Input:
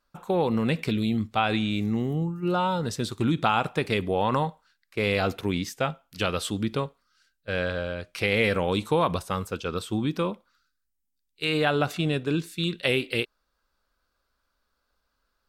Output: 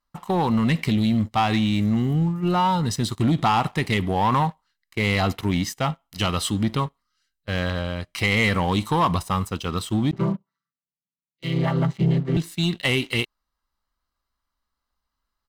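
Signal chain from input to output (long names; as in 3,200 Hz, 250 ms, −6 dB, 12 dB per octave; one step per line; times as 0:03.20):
0:10.11–0:12.37: channel vocoder with a chord as carrier major triad, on C3
comb filter 1 ms, depth 56%
leveller curve on the samples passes 2
level −3 dB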